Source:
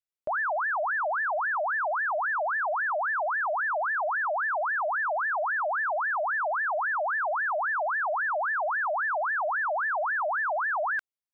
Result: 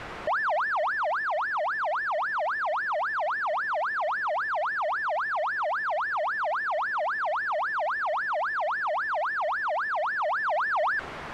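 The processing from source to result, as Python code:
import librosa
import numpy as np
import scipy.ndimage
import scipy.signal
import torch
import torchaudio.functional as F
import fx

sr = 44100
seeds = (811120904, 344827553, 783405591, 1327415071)

y = np.sign(x) * np.sqrt(np.mean(np.square(x)))
y = scipy.signal.sosfilt(scipy.signal.cheby1(2, 1.0, 1400.0, 'lowpass', fs=sr, output='sos'), y)
y = fx.rider(y, sr, range_db=10, speed_s=2.0)
y = F.gain(torch.from_numpy(y), 2.0).numpy()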